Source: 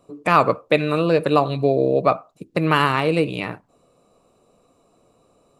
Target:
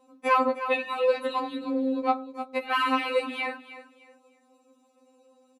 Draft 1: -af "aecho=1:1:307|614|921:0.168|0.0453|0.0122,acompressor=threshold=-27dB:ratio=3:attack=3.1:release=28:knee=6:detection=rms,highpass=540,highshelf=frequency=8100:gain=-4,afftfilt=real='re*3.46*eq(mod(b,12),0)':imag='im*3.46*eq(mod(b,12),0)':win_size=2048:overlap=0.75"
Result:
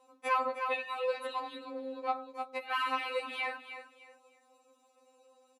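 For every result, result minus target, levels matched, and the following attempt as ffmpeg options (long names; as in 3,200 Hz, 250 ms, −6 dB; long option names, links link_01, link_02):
125 Hz band −9.5 dB; downward compressor: peak gain reduction +7 dB
-af "aecho=1:1:307|614|921:0.168|0.0453|0.0122,acompressor=threshold=-27dB:ratio=3:attack=3.1:release=28:knee=6:detection=rms,highpass=160,highshelf=frequency=8100:gain=-4,afftfilt=real='re*3.46*eq(mod(b,12),0)':imag='im*3.46*eq(mod(b,12),0)':win_size=2048:overlap=0.75"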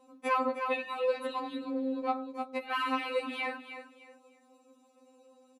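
downward compressor: peak gain reduction +7 dB
-af "aecho=1:1:307|614|921:0.168|0.0453|0.0122,acompressor=threshold=-16.5dB:ratio=3:attack=3.1:release=28:knee=6:detection=rms,highpass=160,highshelf=frequency=8100:gain=-4,afftfilt=real='re*3.46*eq(mod(b,12),0)':imag='im*3.46*eq(mod(b,12),0)':win_size=2048:overlap=0.75"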